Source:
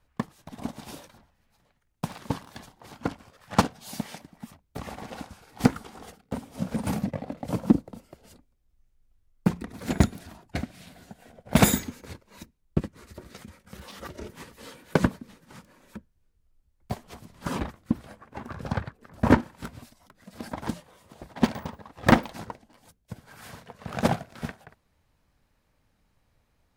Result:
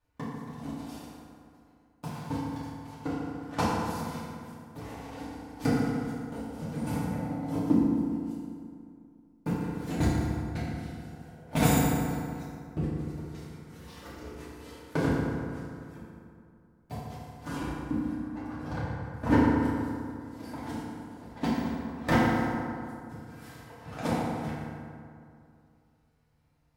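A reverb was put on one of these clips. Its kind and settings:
feedback delay network reverb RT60 2.4 s, low-frequency decay 1.05×, high-frequency decay 0.5×, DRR −10 dB
level −13.5 dB

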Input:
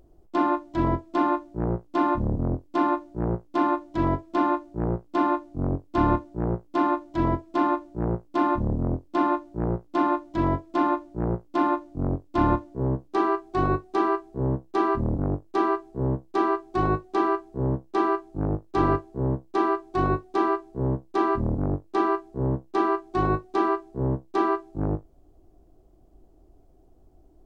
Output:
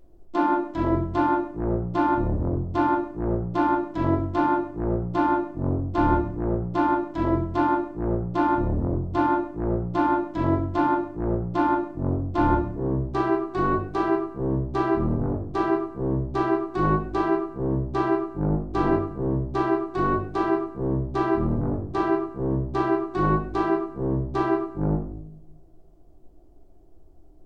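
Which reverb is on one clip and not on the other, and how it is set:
rectangular room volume 120 cubic metres, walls mixed, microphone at 0.77 metres
level −2.5 dB

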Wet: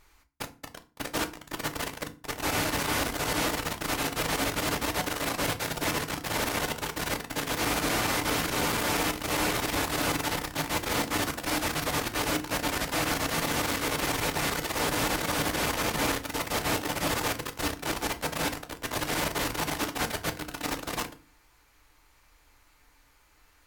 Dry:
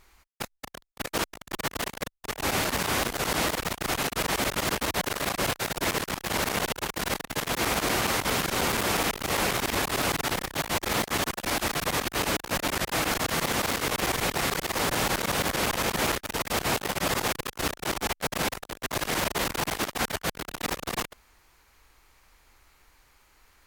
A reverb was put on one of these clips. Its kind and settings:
feedback delay network reverb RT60 0.34 s, low-frequency decay 1.55×, high-frequency decay 0.8×, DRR 6 dB
level −2.5 dB

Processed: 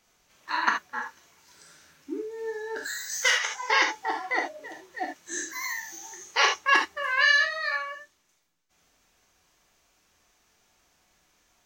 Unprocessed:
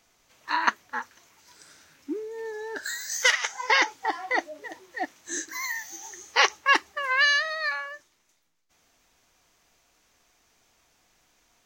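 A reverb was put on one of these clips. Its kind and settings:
reverb whose tail is shaped and stops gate 100 ms flat, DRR 0.5 dB
level −3.5 dB

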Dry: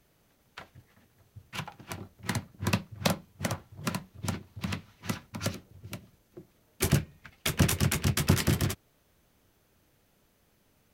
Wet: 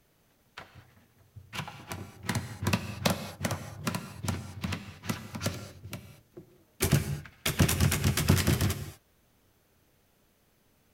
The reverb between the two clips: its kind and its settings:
reverb whose tail is shaped and stops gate 260 ms flat, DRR 9.5 dB

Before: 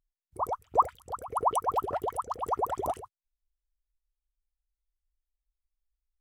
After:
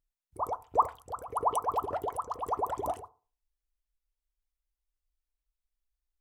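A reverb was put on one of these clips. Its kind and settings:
feedback delay network reverb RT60 0.37 s, low-frequency decay 1.1×, high-frequency decay 0.25×, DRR 13 dB
level −2 dB

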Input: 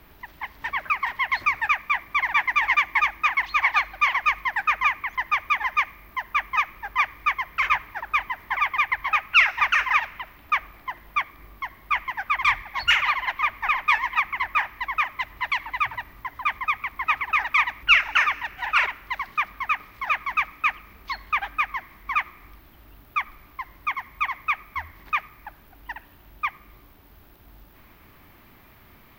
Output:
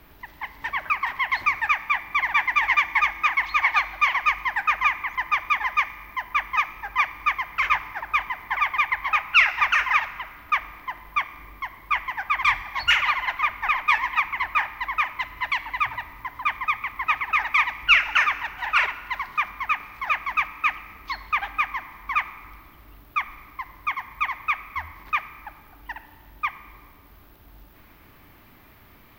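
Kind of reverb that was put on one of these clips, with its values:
feedback delay network reverb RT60 2.1 s, high-frequency decay 0.6×, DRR 12.5 dB

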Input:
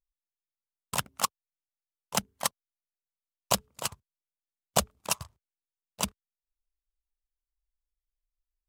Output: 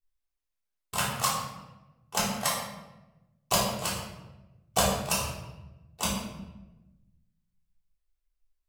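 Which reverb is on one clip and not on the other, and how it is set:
rectangular room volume 470 cubic metres, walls mixed, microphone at 3.5 metres
level −5 dB

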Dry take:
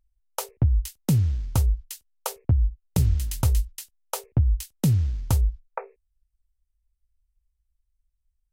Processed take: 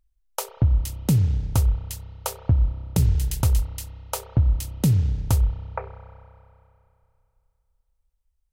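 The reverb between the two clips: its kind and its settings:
spring reverb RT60 2.6 s, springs 31 ms, chirp 75 ms, DRR 10.5 dB
level +1.5 dB

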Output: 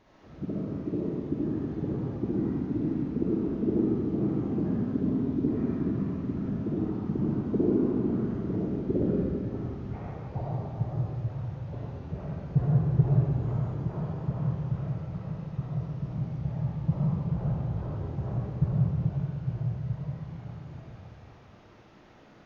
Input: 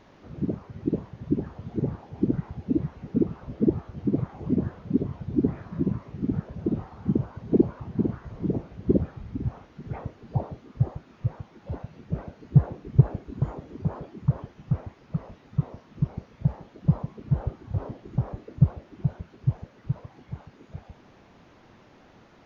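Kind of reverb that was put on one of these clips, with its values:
comb and all-pass reverb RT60 2.5 s, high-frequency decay 0.9×, pre-delay 20 ms, DRR −6.5 dB
level −8 dB

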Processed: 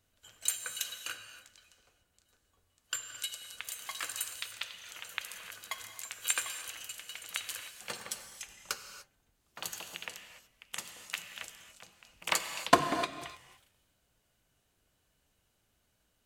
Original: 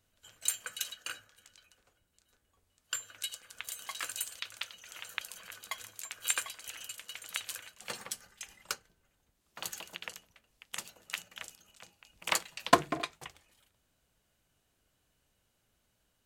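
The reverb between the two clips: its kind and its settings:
reverb whose tail is shaped and stops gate 320 ms flat, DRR 7.5 dB

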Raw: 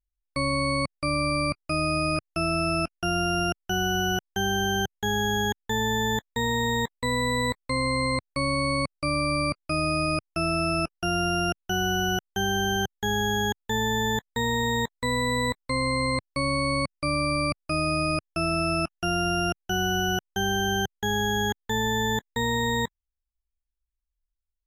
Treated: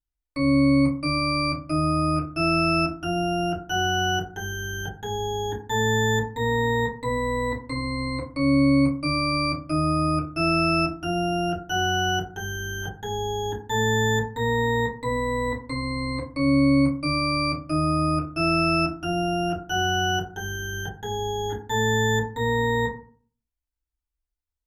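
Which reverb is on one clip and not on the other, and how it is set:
feedback delay network reverb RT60 0.45 s, low-frequency decay 1.25×, high-frequency decay 0.4×, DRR −6.5 dB
level −7.5 dB

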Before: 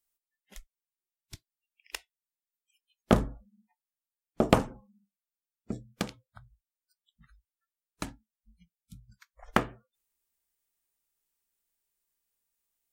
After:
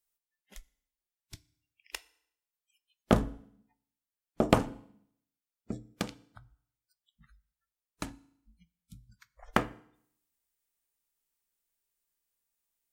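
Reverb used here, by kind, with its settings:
feedback delay network reverb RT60 0.68 s, low-frequency decay 1.1×, high-frequency decay 0.95×, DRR 17.5 dB
level −1.5 dB

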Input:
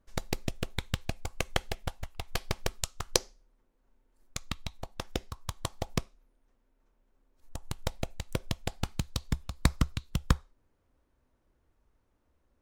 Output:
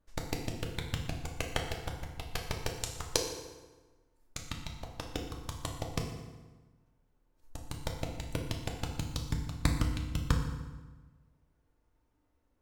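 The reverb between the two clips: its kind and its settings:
feedback delay network reverb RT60 1.3 s, low-frequency decay 1.2×, high-frequency decay 0.75×, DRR 1 dB
level −4.5 dB

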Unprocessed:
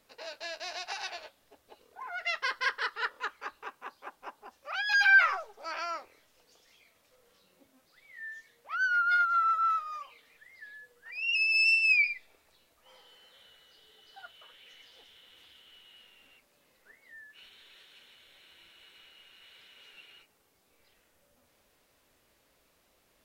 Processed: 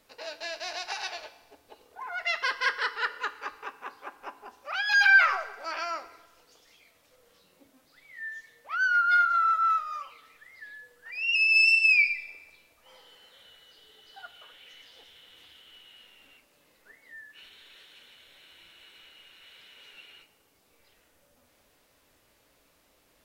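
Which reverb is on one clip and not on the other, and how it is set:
feedback delay network reverb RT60 1.2 s, high-frequency decay 0.85×, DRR 11.5 dB
level +3 dB

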